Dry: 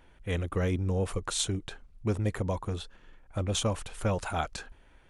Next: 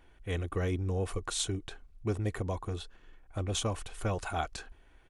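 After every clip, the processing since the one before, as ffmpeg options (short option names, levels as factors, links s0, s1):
-af "aecho=1:1:2.7:0.31,volume=0.708"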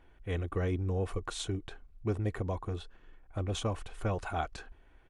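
-af "highshelf=f=4000:g=-10.5"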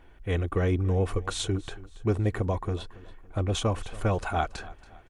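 -af "aecho=1:1:280|560|840:0.106|0.0434|0.0178,volume=2.11"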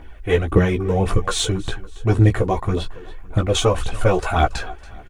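-filter_complex "[0:a]aphaser=in_gain=1:out_gain=1:delay=2.9:decay=0.57:speed=1.8:type=triangular,asplit=2[s0][s1];[s1]adelay=16,volume=0.596[s2];[s0][s2]amix=inputs=2:normalize=0,volume=2.37"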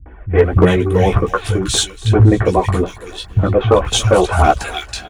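-filter_complex "[0:a]highpass=44,acrossover=split=160|2100[s0][s1][s2];[s1]adelay=60[s3];[s2]adelay=380[s4];[s0][s3][s4]amix=inputs=3:normalize=0,volume=2.82,asoftclip=hard,volume=0.355,volume=2.24"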